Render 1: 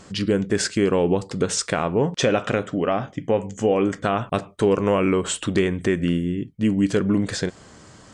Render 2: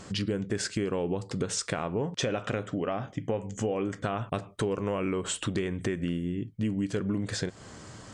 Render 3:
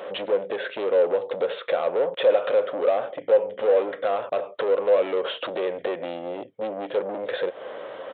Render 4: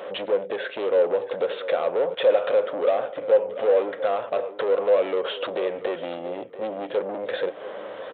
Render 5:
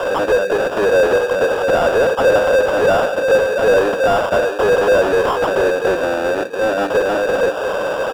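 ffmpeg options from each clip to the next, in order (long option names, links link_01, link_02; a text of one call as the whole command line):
ffmpeg -i in.wav -af "equalizer=frequency=110:width=5.2:gain=5.5,acompressor=threshold=-30dB:ratio=3" out.wav
ffmpeg -i in.wav -af "aresample=8000,asoftclip=type=tanh:threshold=-33dB,aresample=44100,highpass=frequency=530:width_type=q:width=6.2,volume=7.5dB" out.wav
ffmpeg -i in.wav -filter_complex "[0:a]asplit=2[link_01][link_02];[link_02]adelay=686,lowpass=frequency=3200:poles=1,volume=-14dB,asplit=2[link_03][link_04];[link_04]adelay=686,lowpass=frequency=3200:poles=1,volume=0.21[link_05];[link_01][link_03][link_05]amix=inputs=3:normalize=0" out.wav
ffmpeg -i in.wav -filter_complex "[0:a]acrusher=samples=21:mix=1:aa=0.000001,asplit=2[link_01][link_02];[link_02]highpass=frequency=720:poles=1,volume=26dB,asoftclip=type=tanh:threshold=-8.5dB[link_03];[link_01][link_03]amix=inputs=2:normalize=0,lowpass=frequency=1200:poles=1,volume=-6dB,volume=3.5dB" out.wav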